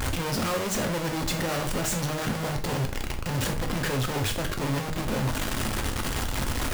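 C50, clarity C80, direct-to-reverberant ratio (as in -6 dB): 11.0 dB, 16.0 dB, 4.0 dB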